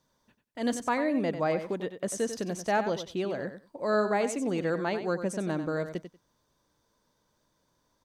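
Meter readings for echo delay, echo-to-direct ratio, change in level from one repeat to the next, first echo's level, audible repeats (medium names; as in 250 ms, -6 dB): 94 ms, -10.0 dB, -16.0 dB, -10.0 dB, 2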